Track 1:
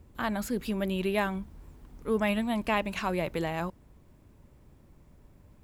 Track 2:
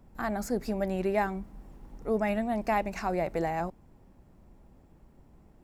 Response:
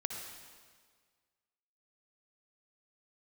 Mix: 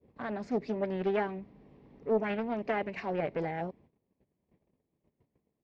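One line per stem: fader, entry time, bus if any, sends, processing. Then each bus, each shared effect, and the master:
-5.0 dB, 0.00 s, no send, step-sequenced low-pass 10 Hz 500–1900 Hz; auto duck -12 dB, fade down 0.25 s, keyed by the second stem
-3.0 dB, 7.5 ms, no send, none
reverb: none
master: gate -55 dBFS, range -19 dB; cabinet simulation 110–4200 Hz, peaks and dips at 440 Hz +5 dB, 840 Hz -5 dB, 1.4 kHz -10 dB, 2.2 kHz +4 dB; loudspeaker Doppler distortion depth 0.42 ms

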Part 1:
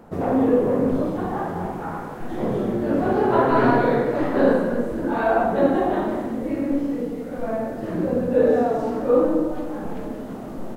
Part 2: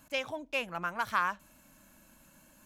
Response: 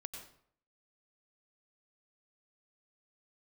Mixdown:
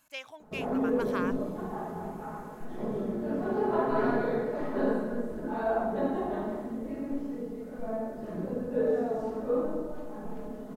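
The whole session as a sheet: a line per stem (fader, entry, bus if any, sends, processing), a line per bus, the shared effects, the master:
-10.5 dB, 0.40 s, no send, peaking EQ 2.6 kHz -4 dB 1.8 oct; hum notches 60/120/180/240 Hz; comb 4.7 ms, depth 57%
-5.5 dB, 0.00 s, no send, bass shelf 460 Hz -12 dB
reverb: none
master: none

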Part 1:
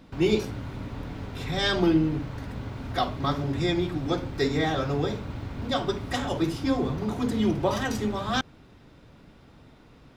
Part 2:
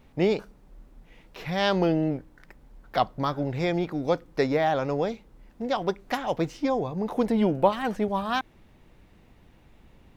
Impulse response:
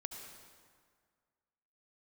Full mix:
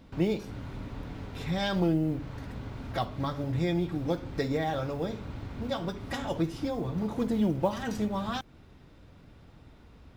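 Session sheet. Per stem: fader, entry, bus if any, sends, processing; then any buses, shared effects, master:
-4.0 dB, 0.00 s, no send, compression, threshold -28 dBFS, peak gain reduction 10.5 dB
-10.5 dB, 0.00 s, no send, modulation noise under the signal 30 dB; peaking EQ 83 Hz +14 dB 2.9 oct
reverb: none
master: none

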